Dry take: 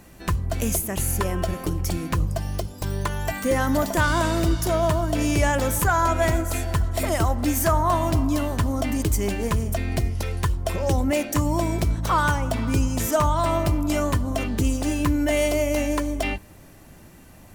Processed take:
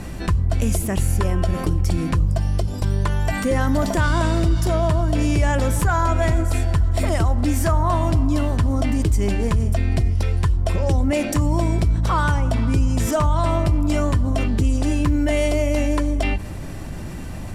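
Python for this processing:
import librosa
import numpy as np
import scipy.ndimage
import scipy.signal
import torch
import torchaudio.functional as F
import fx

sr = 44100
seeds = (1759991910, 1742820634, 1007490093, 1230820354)

y = scipy.signal.sosfilt(scipy.signal.butter(2, 9000.0, 'lowpass', fs=sr, output='sos'), x)
y = fx.low_shelf(y, sr, hz=180.0, db=8.5)
y = fx.notch(y, sr, hz=6400.0, q=14.0)
y = fx.env_flatten(y, sr, amount_pct=50)
y = F.gain(torch.from_numpy(y), -4.0).numpy()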